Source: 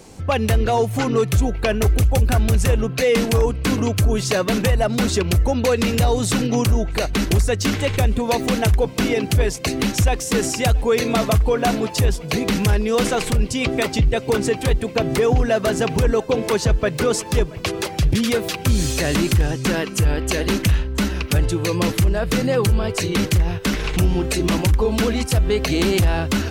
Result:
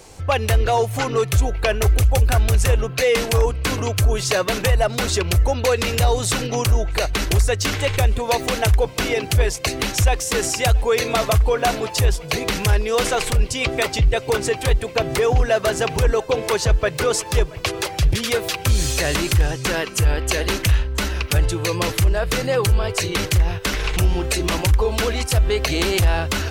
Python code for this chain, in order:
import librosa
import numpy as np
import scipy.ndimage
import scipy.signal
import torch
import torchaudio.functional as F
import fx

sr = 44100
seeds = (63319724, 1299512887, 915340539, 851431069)

y = fx.peak_eq(x, sr, hz=220.0, db=-12.5, octaves=1.1)
y = y * librosa.db_to_amplitude(2.0)